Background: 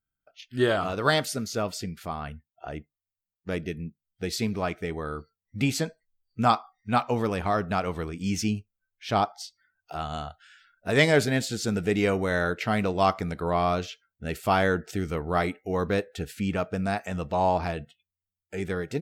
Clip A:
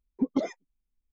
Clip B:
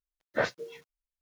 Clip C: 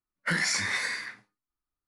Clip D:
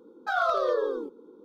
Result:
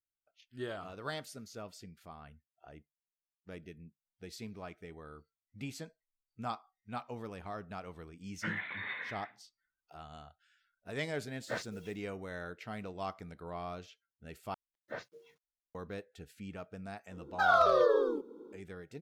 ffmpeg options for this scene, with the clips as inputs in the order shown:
-filter_complex "[2:a]asplit=2[a][b];[0:a]volume=-17dB[c];[3:a]aresample=8000,aresample=44100[d];[a]highshelf=f=3.9k:g=10[e];[c]asplit=2[f][g];[f]atrim=end=14.544[h];[b]atrim=end=1.21,asetpts=PTS-STARTPTS,volume=-15dB[i];[g]atrim=start=15.746[j];[d]atrim=end=1.87,asetpts=PTS-STARTPTS,volume=-10dB,afade=t=in:d=0.004:c=hsin,afade=t=out:st=1.866:d=0.004:c=hsin,adelay=8160[k];[e]atrim=end=1.21,asetpts=PTS-STARTPTS,volume=-11dB,afade=t=in:d=0.004:c=hsin,afade=t=out:st=1.206:d=0.004:c=hsin,adelay=11130[l];[4:a]atrim=end=1.44,asetpts=PTS-STARTPTS,afade=t=in:d=0.004:c=hsin,afade=t=out:st=1.436:d=0.004:c=hsin,adelay=17120[m];[h][i]acrossfade=d=0.004:c1=hsin:c2=hsin[n];[n][j]acrossfade=d=0.004:c1=hsin:c2=hsin[o];[o][k][l][m]amix=inputs=4:normalize=0"

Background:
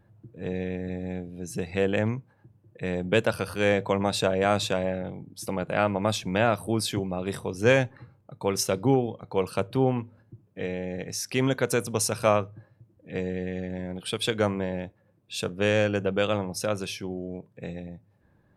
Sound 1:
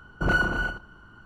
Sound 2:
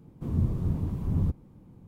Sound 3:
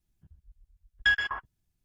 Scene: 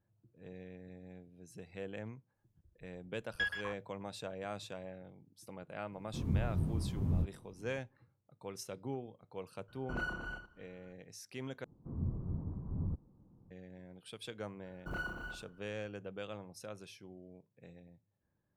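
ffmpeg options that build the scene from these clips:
-filter_complex "[2:a]asplit=2[a][b];[1:a]asplit=2[c][d];[0:a]volume=-19dB[e];[a]flanger=delay=19:depth=5.9:speed=2.7[f];[b]lowpass=f=1.3k:w=0.5412,lowpass=f=1.3k:w=1.3066[g];[d]acrusher=bits=8:mode=log:mix=0:aa=0.000001[h];[e]asplit=2[i][j];[i]atrim=end=11.644[k];[g]atrim=end=1.87,asetpts=PTS-STARTPTS,volume=-11dB[l];[j]atrim=start=13.506[m];[3:a]atrim=end=1.84,asetpts=PTS-STARTPTS,volume=-11.5dB,afade=t=in:d=0.004:c=hsin,afade=t=out:st=1.836:d=0.004:c=hsin,adelay=2340[n];[f]atrim=end=1.87,asetpts=PTS-STARTPTS,volume=-3.5dB,afade=t=in:d=0.004:c=hsin,afade=t=out:st=1.866:d=0.004:c=hsin,adelay=5920[o];[c]atrim=end=1.25,asetpts=PTS-STARTPTS,volume=-16dB,afade=t=in:d=0.004:c=hsin,afade=t=out:st=1.246:d=0.004:c=hsin,adelay=9680[p];[h]atrim=end=1.25,asetpts=PTS-STARTPTS,volume=-17.5dB,afade=t=in:d=0.004:c=hsin,afade=t=out:st=1.246:d=0.004:c=hsin,adelay=14650[q];[k][l]acrossfade=d=0.004:c1=hsin:c2=hsin[r];[r][m]acrossfade=d=0.004:c1=hsin:c2=hsin[s];[s][n][o][p][q]amix=inputs=5:normalize=0"

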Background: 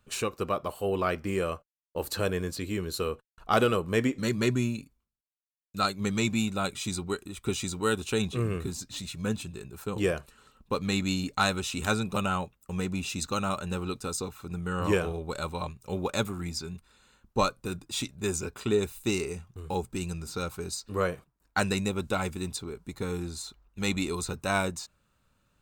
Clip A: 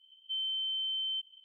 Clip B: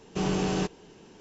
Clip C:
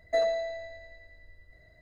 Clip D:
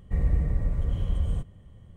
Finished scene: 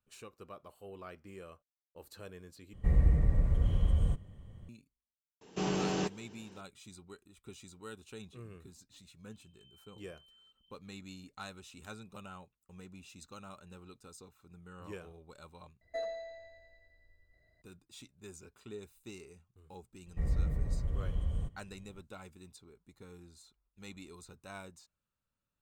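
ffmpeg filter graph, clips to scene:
-filter_complex "[4:a]asplit=2[a][b];[0:a]volume=-20dB[c];[2:a]highpass=f=150:p=1[d];[1:a]acompressor=threshold=-50dB:ratio=6:attack=3.2:release=140:knee=1:detection=peak[e];[c]asplit=3[f][g][h];[f]atrim=end=2.734[i];[a]atrim=end=1.96,asetpts=PTS-STARTPTS,volume=-1.5dB[j];[g]atrim=start=4.686:end=15.814[k];[3:a]atrim=end=1.81,asetpts=PTS-STARTPTS,volume=-12dB[l];[h]atrim=start=17.616[m];[d]atrim=end=1.2,asetpts=PTS-STARTPTS,volume=-4dB,afade=t=in:d=0.004:c=hsin,afade=t=out:st=1.196:d=0.004:c=hsin,adelay=238581S[n];[e]atrim=end=1.44,asetpts=PTS-STARTPTS,volume=-15dB,afade=t=in:d=0.004:c=hsin,afade=t=out:st=1.436:d=0.004:c=hsin,adelay=9310[o];[b]atrim=end=1.96,asetpts=PTS-STARTPTS,volume=-7.5dB,afade=t=in:d=0.004:c=hsin,afade=t=out:st=1.956:d=0.004:c=hsin,adelay=20060[p];[i][j]acrossfade=d=0.004:c1=hsin:c2=hsin[q];[q][k]acrossfade=d=0.004:c1=hsin:c2=hsin[r];[r][l]acrossfade=d=0.004:c1=hsin:c2=hsin[s];[s][m]acrossfade=d=0.004:c1=hsin:c2=hsin[t];[t][n][o][p]amix=inputs=4:normalize=0"

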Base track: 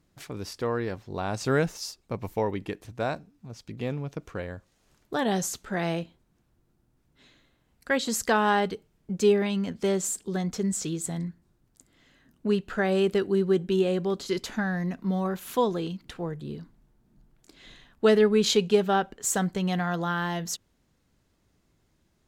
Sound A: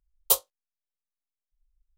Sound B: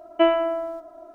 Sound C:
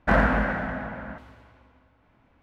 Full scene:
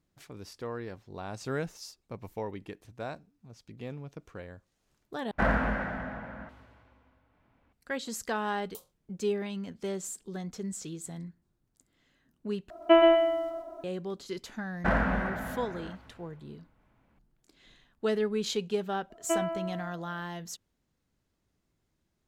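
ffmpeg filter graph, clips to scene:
-filter_complex "[3:a]asplit=2[a][b];[2:a]asplit=2[c][d];[0:a]volume=-9dB[e];[1:a]acompressor=threshold=-39dB:ratio=6:attack=3.2:release=140:knee=1:detection=peak[f];[c]aecho=1:1:125|250|375|500:0.631|0.164|0.0427|0.0111[g];[e]asplit=3[h][i][j];[h]atrim=end=5.314[k];[a]atrim=end=2.42,asetpts=PTS-STARTPTS,volume=-6dB[l];[i]atrim=start=7.726:end=12.704[m];[g]atrim=end=1.14,asetpts=PTS-STARTPTS,volume=-1.5dB[n];[j]atrim=start=13.836[o];[f]atrim=end=1.97,asetpts=PTS-STARTPTS,volume=-6.5dB,afade=t=in:d=0.004:c=hsin,afade=t=out:st=1.966:d=0.004:c=hsin,adelay=8450[p];[b]atrim=end=2.42,asetpts=PTS-STARTPTS,volume=-6.5dB,afade=t=in:d=0.004:c=hsin,afade=t=out:st=2.416:d=0.004:c=hsin,adelay=14770[q];[d]atrim=end=1.14,asetpts=PTS-STARTPTS,volume=-11dB,afade=t=in:d=0.004:c=hsin,afade=t=out:st=1.136:d=0.004:c=hsin,adelay=19100[r];[k][l]acrossfade=d=0.004:c1=hsin:c2=hsin[s];[s][m]acrossfade=d=0.004:c1=hsin:c2=hsin[t];[t][n]acrossfade=d=0.004:c1=hsin:c2=hsin[u];[u][o]acrossfade=d=0.004:c1=hsin:c2=hsin[v];[v][p][q][r]amix=inputs=4:normalize=0"

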